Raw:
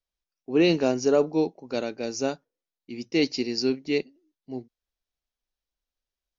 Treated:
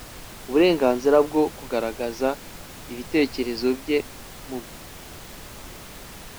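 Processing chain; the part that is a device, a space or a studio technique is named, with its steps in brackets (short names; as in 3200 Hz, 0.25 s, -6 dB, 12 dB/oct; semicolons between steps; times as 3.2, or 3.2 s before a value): horn gramophone (BPF 230–3300 Hz; bell 1000 Hz +8 dB; wow and flutter; pink noise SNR 15 dB); gain +3 dB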